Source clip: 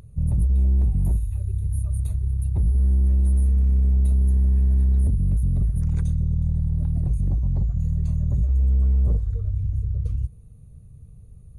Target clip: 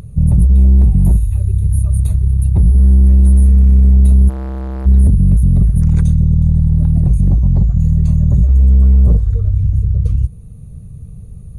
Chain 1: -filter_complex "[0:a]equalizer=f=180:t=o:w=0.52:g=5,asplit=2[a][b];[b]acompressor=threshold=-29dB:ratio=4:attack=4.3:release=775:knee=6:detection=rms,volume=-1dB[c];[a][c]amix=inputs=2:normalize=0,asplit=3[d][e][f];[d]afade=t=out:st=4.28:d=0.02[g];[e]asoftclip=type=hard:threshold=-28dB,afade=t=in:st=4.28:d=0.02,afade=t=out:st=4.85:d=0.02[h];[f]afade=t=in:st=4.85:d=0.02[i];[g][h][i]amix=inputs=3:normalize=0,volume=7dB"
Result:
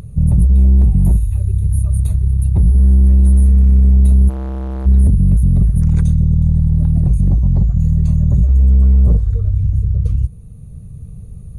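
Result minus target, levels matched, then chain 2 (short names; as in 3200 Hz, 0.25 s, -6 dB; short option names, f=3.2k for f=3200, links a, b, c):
compressor: peak gain reduction +5 dB
-filter_complex "[0:a]equalizer=f=180:t=o:w=0.52:g=5,asplit=2[a][b];[b]acompressor=threshold=-22dB:ratio=4:attack=4.3:release=775:knee=6:detection=rms,volume=-1dB[c];[a][c]amix=inputs=2:normalize=0,asplit=3[d][e][f];[d]afade=t=out:st=4.28:d=0.02[g];[e]asoftclip=type=hard:threshold=-28dB,afade=t=in:st=4.28:d=0.02,afade=t=out:st=4.85:d=0.02[h];[f]afade=t=in:st=4.85:d=0.02[i];[g][h][i]amix=inputs=3:normalize=0,volume=7dB"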